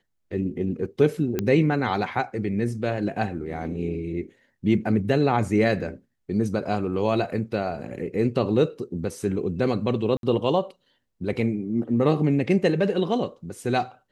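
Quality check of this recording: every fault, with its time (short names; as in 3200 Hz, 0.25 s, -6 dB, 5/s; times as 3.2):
1.39 pop -11 dBFS
10.17–10.23 gap 62 ms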